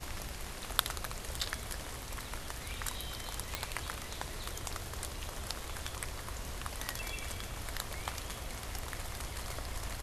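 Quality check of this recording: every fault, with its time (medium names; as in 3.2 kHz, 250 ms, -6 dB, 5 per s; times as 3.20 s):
3.55 s: pop -15 dBFS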